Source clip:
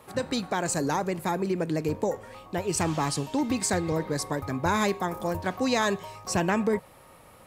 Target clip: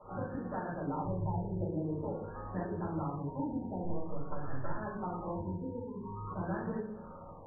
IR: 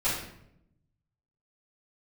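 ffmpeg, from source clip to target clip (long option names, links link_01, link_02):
-filter_complex "[0:a]asettb=1/sr,asplit=3[link_01][link_02][link_03];[link_01]atrim=end=1.034[link_04];[link_02]atrim=start=1.03:end=1.6,asetpts=PTS-STARTPTS,afade=type=in:duration=0.004:curve=qsin,afade=type=out:start_time=0.566:duration=0.004:curve=qsin,lowshelf=frequency=150:width_type=q:width=3:gain=12.5[link_05];[link_03]atrim=start=1.596[link_06];[link_04][link_05]acrossfade=duration=0.004:curve1=hsin:curve2=qsin[link_07];[link_07][link_06]acrossfade=duration=0.004:curve1=qsin:curve2=hsin,acompressor=threshold=-36dB:ratio=12,asettb=1/sr,asplit=3[link_08][link_09][link_10];[link_08]atrim=end=3.834[link_11];[link_09]atrim=start=3.83:end=4.76,asetpts=PTS-STARTPTS,afade=type=in:duration=0.004:curve=qsin,afade=type=out:start_time=0.926:duration=0.004:curve=qsin,acrusher=bits=6:dc=4:mix=0:aa=0.000001[link_12];[link_10]atrim=start=4.756[link_13];[link_11][link_12]acrossfade=duration=0.004:curve1=hsin:curve2=qsin[link_14];[link_14][link_13]acrossfade=duration=0.004:curve1=qsin:curve2=hsin,asettb=1/sr,asplit=3[link_15][link_16][link_17];[link_15]atrim=end=5.364[link_18];[link_16]atrim=start=5.36:end=6.31,asetpts=PTS-STARTPTS,afade=type=in:duration=0.004:curve=qsin,afade=type=out:start_time=0.946:duration=0.004:curve=qsin,asuperstop=centerf=690:order=12:qfactor=1.7[link_19];[link_17]atrim=start=6.306[link_20];[link_18][link_19]acrossfade=duration=0.004:curve1=hsin:curve2=qsin[link_21];[link_21][link_20]acrossfade=duration=0.004:curve1=qsin:curve2=hsin[link_22];[1:a]atrim=start_sample=2205[link_23];[link_22][link_23]afir=irnorm=-1:irlink=0,afftfilt=real='re*lt(b*sr/1024,950*pow(1900/950,0.5+0.5*sin(2*PI*0.48*pts/sr)))':imag='im*lt(b*sr/1024,950*pow(1900/950,0.5+0.5*sin(2*PI*0.48*pts/sr)))':win_size=1024:overlap=0.75,volume=-7.5dB"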